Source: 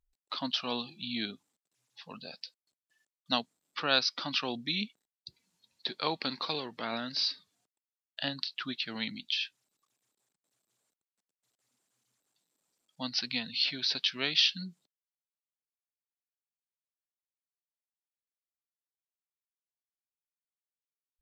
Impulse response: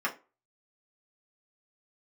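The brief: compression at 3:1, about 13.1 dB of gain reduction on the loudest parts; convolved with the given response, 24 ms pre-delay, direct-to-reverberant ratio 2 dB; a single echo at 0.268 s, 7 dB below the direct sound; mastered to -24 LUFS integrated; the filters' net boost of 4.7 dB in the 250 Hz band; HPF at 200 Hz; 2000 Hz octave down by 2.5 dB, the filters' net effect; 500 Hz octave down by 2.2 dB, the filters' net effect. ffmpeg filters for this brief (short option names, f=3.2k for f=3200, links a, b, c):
-filter_complex "[0:a]highpass=200,equalizer=f=250:t=o:g=8,equalizer=f=500:t=o:g=-4.5,equalizer=f=2k:t=o:g=-3.5,acompressor=threshold=-40dB:ratio=3,aecho=1:1:268:0.447,asplit=2[a][b];[1:a]atrim=start_sample=2205,adelay=24[c];[b][c]afir=irnorm=-1:irlink=0,volume=-11dB[d];[a][d]amix=inputs=2:normalize=0,volume=16.5dB"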